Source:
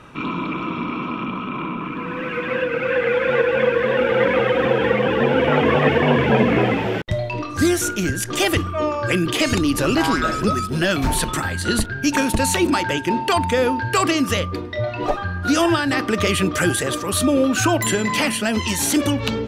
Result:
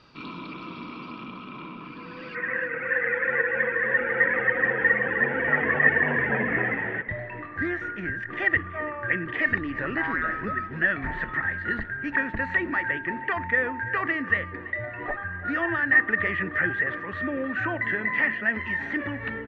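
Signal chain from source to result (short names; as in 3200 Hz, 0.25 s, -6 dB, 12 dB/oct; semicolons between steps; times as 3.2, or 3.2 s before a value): ladder low-pass 4800 Hz, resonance 90%, from 2.34 s 1900 Hz; feedback echo 0.332 s, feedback 58%, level -18 dB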